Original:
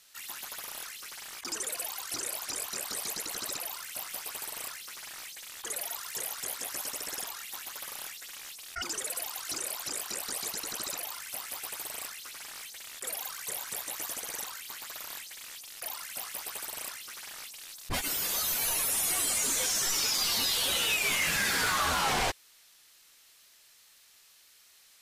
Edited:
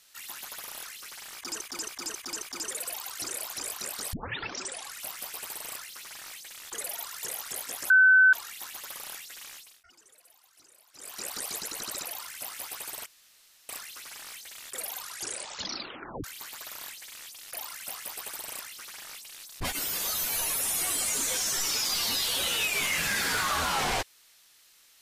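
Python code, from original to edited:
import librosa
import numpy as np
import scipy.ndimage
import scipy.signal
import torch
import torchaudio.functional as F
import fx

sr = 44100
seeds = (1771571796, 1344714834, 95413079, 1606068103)

y = fx.edit(x, sr, fx.repeat(start_s=1.34, length_s=0.27, count=5),
    fx.tape_start(start_s=3.05, length_s=0.91),
    fx.bleep(start_s=6.82, length_s=0.43, hz=1520.0, db=-14.5),
    fx.fade_down_up(start_s=8.4, length_s=1.79, db=-23.5, fade_s=0.34),
    fx.insert_room_tone(at_s=11.98, length_s=0.63),
    fx.tape_stop(start_s=13.23, length_s=1.3), tone=tone)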